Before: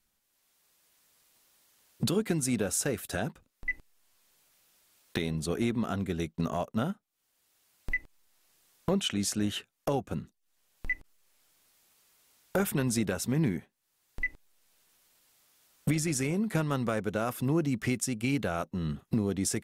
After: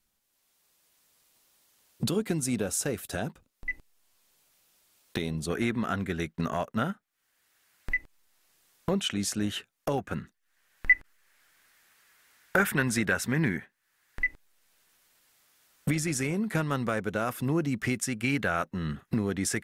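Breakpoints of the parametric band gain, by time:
parametric band 1,700 Hz 1 octave
−1 dB
from 0:05.50 +10 dB
from 0:07.93 +3 dB
from 0:09.98 +14.5 dB
from 0:14.22 +5 dB
from 0:18.01 +11 dB

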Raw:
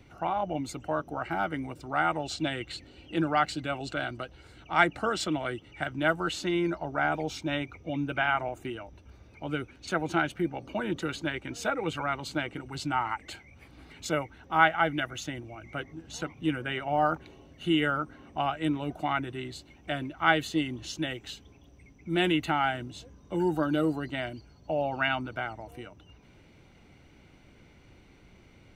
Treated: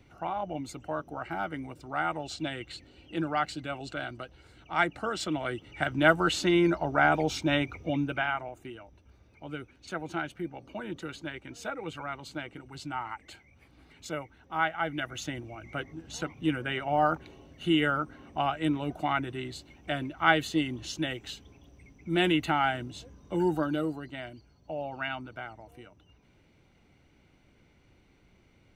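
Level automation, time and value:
0:05.09 −3.5 dB
0:05.99 +4.5 dB
0:07.86 +4.5 dB
0:08.45 −6.5 dB
0:14.74 −6.5 dB
0:15.25 +0.5 dB
0:23.48 +0.5 dB
0:24.02 −6.5 dB

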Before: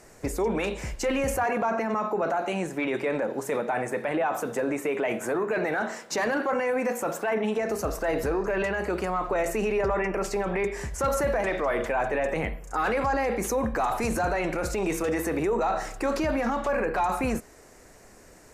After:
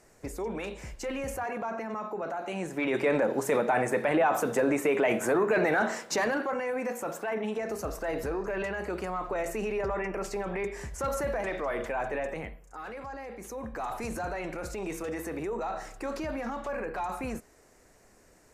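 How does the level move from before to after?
0:02.38 −8 dB
0:03.07 +2 dB
0:05.99 +2 dB
0:06.55 −5.5 dB
0:12.19 −5.5 dB
0:12.76 −15 dB
0:13.38 −15 dB
0:13.90 −8 dB

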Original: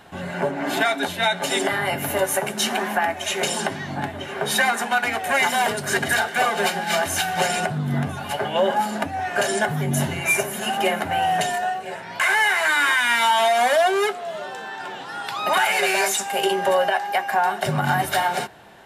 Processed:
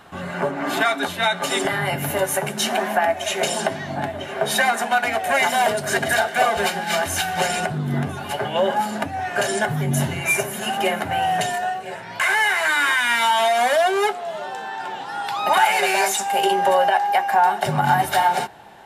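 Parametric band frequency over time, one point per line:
parametric band +8.5 dB 0.27 octaves
1,200 Hz
from 0:01.65 150 Hz
from 0:02.65 650 Hz
from 0:06.57 78 Hz
from 0:07.74 370 Hz
from 0:08.38 120 Hz
from 0:13.97 840 Hz

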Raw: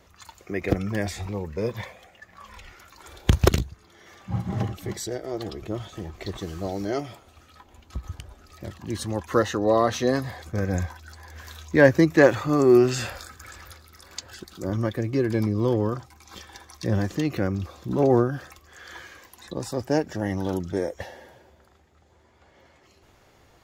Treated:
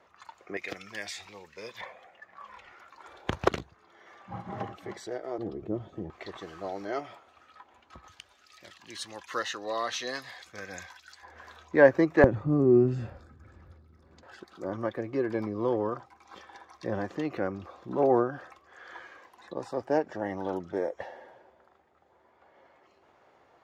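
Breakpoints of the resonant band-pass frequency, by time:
resonant band-pass, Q 0.79
1,000 Hz
from 0:00.57 3,500 Hz
from 0:01.81 960 Hz
from 0:05.38 300 Hz
from 0:06.10 1,200 Hz
from 0:08.08 3,200 Hz
from 0:11.23 800 Hz
from 0:12.24 160 Hz
from 0:14.23 830 Hz

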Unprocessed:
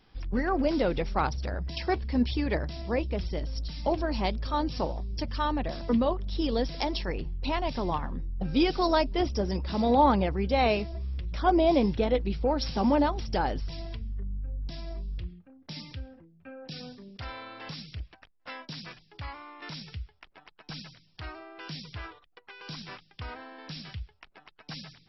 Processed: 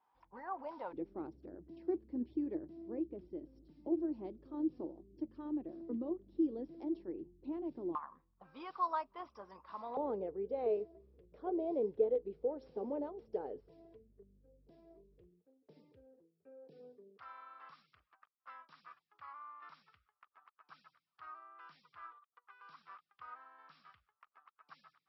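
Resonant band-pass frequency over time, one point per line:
resonant band-pass, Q 7.7
940 Hz
from 0:00.93 330 Hz
from 0:07.95 1,100 Hz
from 0:09.97 440 Hz
from 0:17.18 1,200 Hz

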